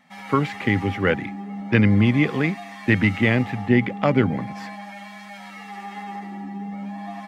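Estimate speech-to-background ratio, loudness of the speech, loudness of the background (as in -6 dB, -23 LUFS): 13.5 dB, -21.0 LUFS, -34.5 LUFS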